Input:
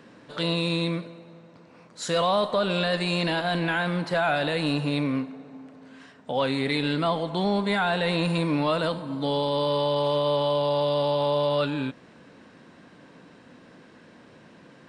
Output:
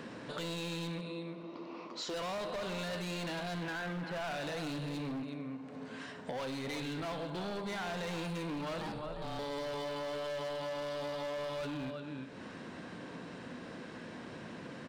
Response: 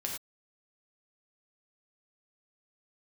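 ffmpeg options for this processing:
-filter_complex "[0:a]asettb=1/sr,asplit=3[s0][s1][s2];[s0]atrim=end=1.084[s3];[s1]atrim=start=1.08:end=2.14,asetpts=PTS-STARTPTS,afade=t=in:d=0.004:c=qsin,afade=t=out:st=1.056:d=0.004:c=qsin,highpass=240,equalizer=f=340:t=q:w=4:g=10,equalizer=f=1100:t=q:w=4:g=7,equalizer=f=1600:t=q:w=4:g=-10,equalizer=f=2900:t=q:w=4:g=3,lowpass=f=5600:w=0.5412,lowpass=f=5600:w=1.3066[s4];[s2]atrim=start=2.136[s5];[s3][s4]acrossfade=d=0.004:c1=hsin:c2=qsin[s6];[s6][s5]acrossfade=d=0.004:c1=qsin:c2=hsin,asettb=1/sr,asplit=3[s7][s8][s9];[s7]atrim=end=8.794[s10];[s8]atrim=start=8.79:end=9.39,asetpts=PTS-STARTPTS,afade=t=in:d=0.004:c=qsin,afade=t=out:st=0.596:d=0.004:c=qsin,aeval=exprs='val(0)*sin(2*PI*300*n/s)':c=same[s11];[s9]atrim=start=9.386[s12];[s10][s11]acrossfade=d=0.004:c1=hsin:c2=qsin[s13];[s13][s12]acrossfade=d=0.004:c1=qsin:c2=hsin,asplit=2[s14][s15];[s15]adelay=349.9,volume=0.282,highshelf=f=4000:g=-7.87[s16];[s14][s16]amix=inputs=2:normalize=0,asettb=1/sr,asplit=3[s17][s18][s19];[s17]atrim=end=3.634[s20];[s18]atrim=start=3.63:end=4.2,asetpts=PTS-STARTPTS,afade=t=in:d=0.004:c=qsin,afade=t=out:st=0.566:d=0.004:c=qsin,acrossover=split=3700[s21][s22];[s22]acompressor=threshold=0.00141:ratio=4:attack=1:release=60[s23];[s21][s23]amix=inputs=2:normalize=0[s24];[s19]atrim=start=4.196[s25];[s20][s24]acrossfade=d=0.004:c1=hsin:c2=qsin[s26];[s26][s25]acrossfade=d=0.004:c1=qsin:c2=hsin,asplit=2[s27][s28];[1:a]atrim=start_sample=2205[s29];[s28][s29]afir=irnorm=-1:irlink=0,volume=0.316[s30];[s27][s30]amix=inputs=2:normalize=0,asoftclip=type=hard:threshold=0.0596,acompressor=threshold=0.00631:ratio=4,volume=1.41"

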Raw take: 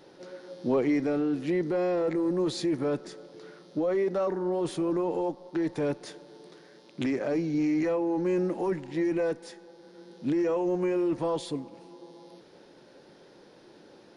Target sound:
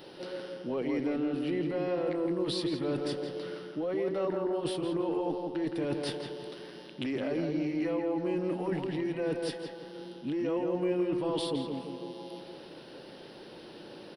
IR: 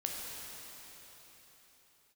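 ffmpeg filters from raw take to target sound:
-filter_complex "[0:a]equalizer=f=2900:t=o:w=0.3:g=10,areverse,acompressor=threshold=0.0178:ratio=6,areverse,aexciter=amount=1:drive=3.7:freq=3700,asplit=2[s0][s1];[s1]adelay=167,lowpass=f=2400:p=1,volume=0.668,asplit=2[s2][s3];[s3]adelay=167,lowpass=f=2400:p=1,volume=0.5,asplit=2[s4][s5];[s5]adelay=167,lowpass=f=2400:p=1,volume=0.5,asplit=2[s6][s7];[s7]adelay=167,lowpass=f=2400:p=1,volume=0.5,asplit=2[s8][s9];[s9]adelay=167,lowpass=f=2400:p=1,volume=0.5,asplit=2[s10][s11];[s11]adelay=167,lowpass=f=2400:p=1,volume=0.5,asplit=2[s12][s13];[s13]adelay=167,lowpass=f=2400:p=1,volume=0.5[s14];[s0][s2][s4][s6][s8][s10][s12][s14]amix=inputs=8:normalize=0,volume=1.58"

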